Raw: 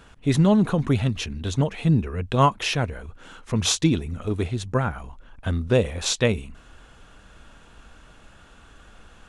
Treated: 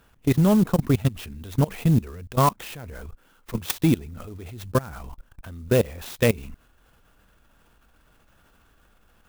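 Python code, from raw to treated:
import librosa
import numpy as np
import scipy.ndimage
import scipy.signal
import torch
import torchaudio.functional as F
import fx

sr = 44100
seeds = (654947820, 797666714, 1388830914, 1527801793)

y = 10.0 ** (-9.0 / 20.0) * np.tanh(x / 10.0 ** (-9.0 / 20.0))
y = fx.level_steps(y, sr, step_db=21)
y = fx.clock_jitter(y, sr, seeds[0], jitter_ms=0.04)
y = y * librosa.db_to_amplitude(4.5)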